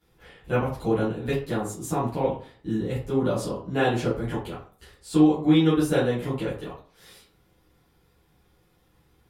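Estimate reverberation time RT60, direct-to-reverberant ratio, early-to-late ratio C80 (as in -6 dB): 0.45 s, -11.5 dB, 10.5 dB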